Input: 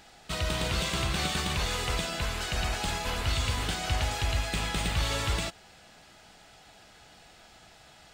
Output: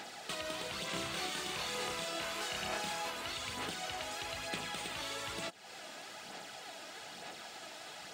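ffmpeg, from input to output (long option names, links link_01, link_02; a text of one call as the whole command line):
ffmpeg -i in.wav -filter_complex "[0:a]highpass=240,acompressor=threshold=-46dB:ratio=6,aphaser=in_gain=1:out_gain=1:delay=3.3:decay=0.38:speed=1.1:type=sinusoidal,asettb=1/sr,asplit=3[link_01][link_02][link_03];[link_01]atrim=end=0.914[link_04];[link_02]atrim=start=0.91:end=3.09,asetpts=PTS-STARTPTS,afade=type=in:duration=0.004:curve=qsin,afade=type=out:start_time=2.176:duration=0.004:curve=qsin,asplit=2[link_05][link_06];[link_06]adelay=30,volume=-2dB[link_07];[link_05][link_07]amix=inputs=2:normalize=0,atrim=end_sample=96138[link_08];[link_03]atrim=start=3.086[link_09];[link_04][link_08]acrossfade=duration=0.004:curve1=hsin:curve2=qsin[link_10];[link_10][link_09]acrossfade=duration=0.004:curve1=qsin:curve2=hsin,volume=6dB" out.wav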